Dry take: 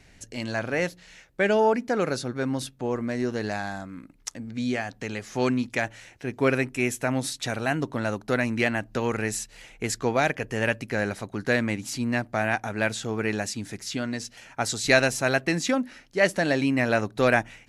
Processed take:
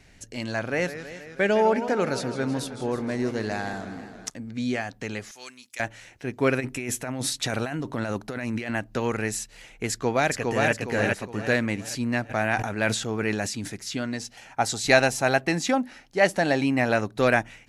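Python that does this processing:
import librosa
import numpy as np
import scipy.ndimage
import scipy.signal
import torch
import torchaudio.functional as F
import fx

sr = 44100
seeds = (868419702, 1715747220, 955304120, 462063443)

y = fx.echo_warbled(x, sr, ms=160, feedback_pct=70, rate_hz=2.8, cents=167, wet_db=-12, at=(0.62, 4.3))
y = fx.differentiator(y, sr, at=(5.31, 5.8))
y = fx.over_compress(y, sr, threshold_db=-30.0, ratio=-1.0, at=(6.59, 8.7), fade=0.02)
y = fx.echo_throw(y, sr, start_s=9.9, length_s=0.82, ms=410, feedback_pct=40, wet_db=-2.5)
y = fx.sustainer(y, sr, db_per_s=64.0, at=(12.29, 13.68), fade=0.02)
y = fx.peak_eq(y, sr, hz=790.0, db=8.5, octaves=0.32, at=(14.18, 16.93))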